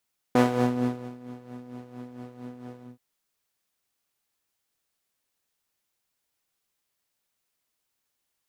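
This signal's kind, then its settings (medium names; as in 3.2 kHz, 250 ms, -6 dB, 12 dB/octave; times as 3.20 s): synth patch with tremolo B3, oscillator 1 saw, sub -7.5 dB, noise -2.5 dB, filter bandpass, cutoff 150 Hz, Q 0.74, filter envelope 2 oct, filter decay 0.40 s, filter sustain 50%, attack 3.1 ms, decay 0.75 s, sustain -22.5 dB, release 0.17 s, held 2.46 s, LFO 4.4 Hz, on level 9 dB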